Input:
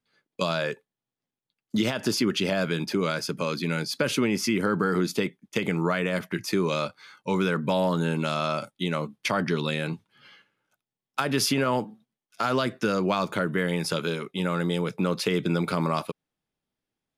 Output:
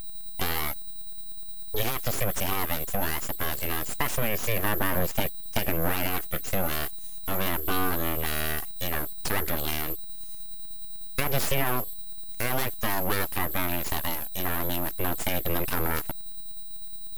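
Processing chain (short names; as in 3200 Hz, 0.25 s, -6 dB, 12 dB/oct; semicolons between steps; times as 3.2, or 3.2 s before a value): whine 12000 Hz -31 dBFS; phaser 0.18 Hz, delay 2.3 ms, feedback 22%; full-wave rectifier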